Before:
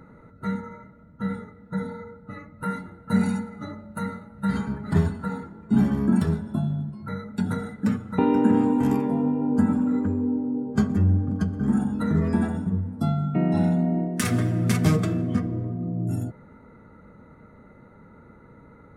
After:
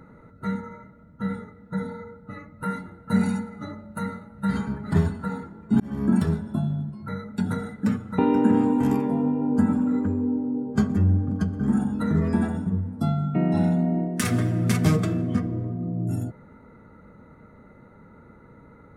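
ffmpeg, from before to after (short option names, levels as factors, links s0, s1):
-filter_complex "[0:a]asplit=2[s0][s1];[s0]atrim=end=5.8,asetpts=PTS-STARTPTS,afade=t=out:st=5.796:d=0.004:c=hsin[s2];[s1]atrim=start=5.8,asetpts=PTS-STARTPTS,afade=t=in:d=0.28[s3];[s2][s3]concat=n=2:v=0:a=1"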